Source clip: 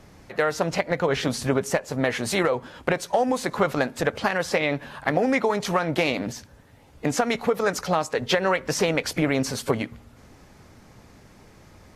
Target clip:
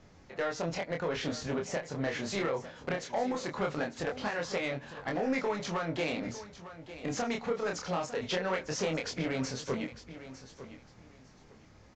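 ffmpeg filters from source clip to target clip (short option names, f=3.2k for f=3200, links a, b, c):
-af "aresample=16000,asoftclip=type=tanh:threshold=-16dB,aresample=44100,flanger=delay=22.5:depth=7.4:speed=0.2,aecho=1:1:903|1806:0.2|0.0439,volume=-5dB"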